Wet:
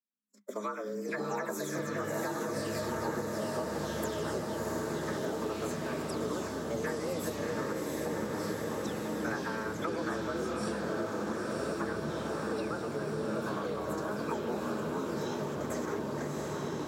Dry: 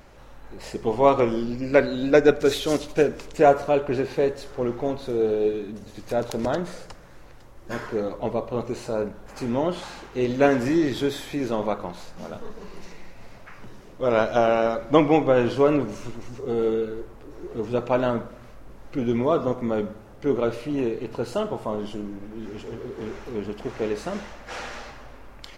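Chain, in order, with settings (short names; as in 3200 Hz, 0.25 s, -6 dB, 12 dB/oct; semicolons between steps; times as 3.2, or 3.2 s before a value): spectral delay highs early, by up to 0.206 s; gate -33 dBFS, range -53 dB; resonant high shelf 6000 Hz +13 dB, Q 3; frequency shift +200 Hz; time stretch by phase-locked vocoder 0.66×; fixed phaser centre 2800 Hz, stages 6; diffused feedback echo 0.697 s, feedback 63%, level -3.5 dB; compressor 10:1, threshold -33 dBFS, peak gain reduction 13 dB; echoes that change speed 0.392 s, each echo -6 st, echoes 3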